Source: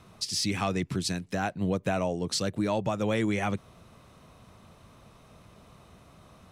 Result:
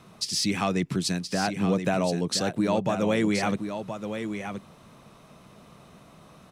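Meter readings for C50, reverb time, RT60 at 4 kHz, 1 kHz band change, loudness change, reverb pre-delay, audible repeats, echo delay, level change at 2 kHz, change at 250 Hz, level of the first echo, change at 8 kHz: no reverb, no reverb, no reverb, +3.5 dB, +2.5 dB, no reverb, 1, 1023 ms, +3.0 dB, +4.5 dB, -8.0 dB, +3.0 dB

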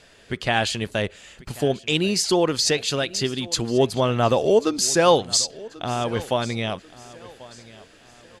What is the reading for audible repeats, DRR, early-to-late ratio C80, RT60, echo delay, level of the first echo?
2, no reverb, no reverb, no reverb, 1089 ms, -20.0 dB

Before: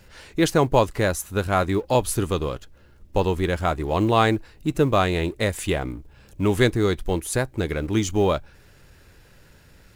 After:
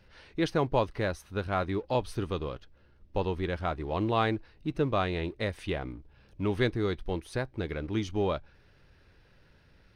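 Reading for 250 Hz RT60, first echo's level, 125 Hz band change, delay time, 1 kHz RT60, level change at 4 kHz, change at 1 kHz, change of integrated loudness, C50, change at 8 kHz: no reverb, no echo, -8.5 dB, no echo, no reverb, -9.0 dB, -8.5 dB, -8.5 dB, no reverb, under -20 dB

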